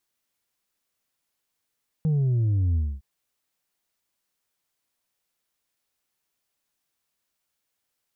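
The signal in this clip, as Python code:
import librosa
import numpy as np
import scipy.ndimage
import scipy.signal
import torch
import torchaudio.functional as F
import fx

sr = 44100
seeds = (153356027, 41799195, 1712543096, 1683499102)

y = fx.sub_drop(sr, level_db=-20, start_hz=160.0, length_s=0.96, drive_db=3, fade_s=0.25, end_hz=65.0)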